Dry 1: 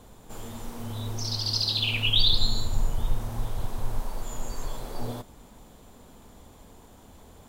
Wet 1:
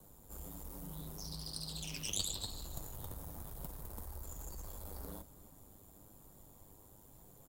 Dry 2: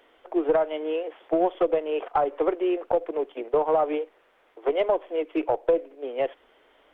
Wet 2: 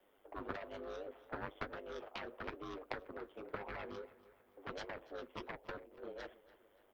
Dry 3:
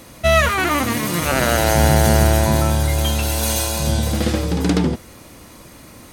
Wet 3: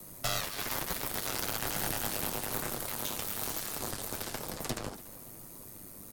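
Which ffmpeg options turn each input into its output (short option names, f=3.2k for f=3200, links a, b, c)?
-filter_complex "[0:a]equalizer=f=5.3k:w=0.34:g=-10,bandreject=f=6k:w=23,acrossover=split=230|580|1200|4000[a][b][c][d][e];[a]acompressor=threshold=-29dB:ratio=4[f];[b]acompressor=threshold=-34dB:ratio=4[g];[c]acompressor=threshold=-38dB:ratio=4[h];[d]acompressor=threshold=-31dB:ratio=4[i];[e]acompressor=threshold=-48dB:ratio=4[j];[f][g][h][i][j]amix=inputs=5:normalize=0,aeval=exprs='0.224*(cos(1*acos(clip(val(0)/0.224,-1,1)))-cos(1*PI/2))+0.0631*(cos(2*acos(clip(val(0)/0.224,-1,1)))-cos(2*PI/2))+0.0158*(cos(4*acos(clip(val(0)/0.224,-1,1)))-cos(4*PI/2))+0.00708*(cos(6*acos(clip(val(0)/0.224,-1,1)))-cos(6*PI/2))+0.0631*(cos(7*acos(clip(val(0)/0.224,-1,1)))-cos(7*PI/2))':c=same,aeval=exprs='val(0)*sin(2*PI*50*n/s)':c=same,acrossover=split=230|3700[k][l][m];[m]crystalizer=i=4.5:c=0[n];[k][l][n]amix=inputs=3:normalize=0,flanger=delay=5.2:depth=6.5:regen=-46:speed=1.1:shape=triangular,asplit=2[o][p];[p]adelay=286,lowpass=f=4.8k:p=1,volume=-18.5dB,asplit=2[q][r];[r]adelay=286,lowpass=f=4.8k:p=1,volume=0.49,asplit=2[s][t];[t]adelay=286,lowpass=f=4.8k:p=1,volume=0.49,asplit=2[u][v];[v]adelay=286,lowpass=f=4.8k:p=1,volume=0.49[w];[q][s][u][w]amix=inputs=4:normalize=0[x];[o][x]amix=inputs=2:normalize=0,volume=-3dB"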